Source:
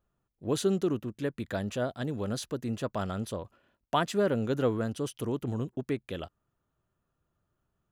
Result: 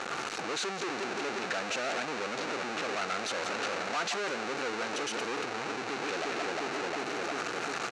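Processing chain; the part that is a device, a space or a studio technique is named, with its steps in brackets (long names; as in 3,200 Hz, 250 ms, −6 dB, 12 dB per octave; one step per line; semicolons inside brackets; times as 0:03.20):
0:02.25–0:02.94: low-pass filter 1,100 Hz 12 dB per octave
single-tap delay 172 ms −17.5 dB
feedback echo with a low-pass in the loop 355 ms, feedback 41%, low-pass 880 Hz, level −16 dB
home computer beeper (sign of each sample alone; loudspeaker in its box 600–5,700 Hz, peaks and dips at 600 Hz −7 dB, 1,000 Hz −8 dB, 1,900 Hz −4 dB, 3,300 Hz −9 dB, 5,000 Hz −7 dB)
level +8 dB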